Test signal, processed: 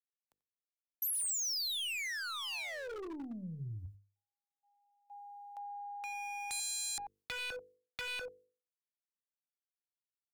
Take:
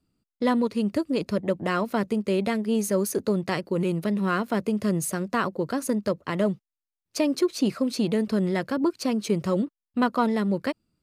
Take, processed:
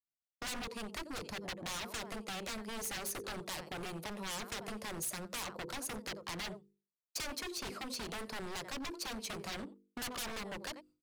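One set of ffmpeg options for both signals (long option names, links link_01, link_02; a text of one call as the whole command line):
ffmpeg -i in.wav -filter_complex "[0:a]aeval=exprs='0.316*(cos(1*acos(clip(val(0)/0.316,-1,1)))-cos(1*PI/2))+0.0224*(cos(2*acos(clip(val(0)/0.316,-1,1)))-cos(2*PI/2))+0.00251*(cos(5*acos(clip(val(0)/0.316,-1,1)))-cos(5*PI/2))+0.00178*(cos(6*acos(clip(val(0)/0.316,-1,1)))-cos(6*PI/2))+0.0158*(cos(7*acos(clip(val(0)/0.316,-1,1)))-cos(7*PI/2))':channel_layout=same,acrossover=split=320|1800[link_01][link_02][link_03];[link_01]acompressor=threshold=-36dB:ratio=10[link_04];[link_02]equalizer=frequency=870:width_type=o:width=1.1:gain=7[link_05];[link_04][link_05][link_03]amix=inputs=3:normalize=0,agate=range=-33dB:threshold=-48dB:ratio=3:detection=peak,bandreject=frequency=50:width_type=h:width=6,bandreject=frequency=100:width_type=h:width=6,bandreject=frequency=150:width_type=h:width=6,bandreject=frequency=200:width_type=h:width=6,bandreject=frequency=250:width_type=h:width=6,bandreject=frequency=300:width_type=h:width=6,bandreject=frequency=350:width_type=h:width=6,bandreject=frequency=400:width_type=h:width=6,bandreject=frequency=450:width_type=h:width=6,bandreject=frequency=500:width_type=h:width=6,asplit=2[link_06][link_07];[link_07]aecho=0:1:89:0.0944[link_08];[link_06][link_08]amix=inputs=2:normalize=0,aeval=exprs='0.0355*(abs(mod(val(0)/0.0355+3,4)-2)-1)':channel_layout=same,acrossover=split=130[link_09][link_10];[link_10]acompressor=threshold=-45dB:ratio=2[link_11];[link_09][link_11]amix=inputs=2:normalize=0,highshelf=frequency=2300:gain=7,volume=-2.5dB" out.wav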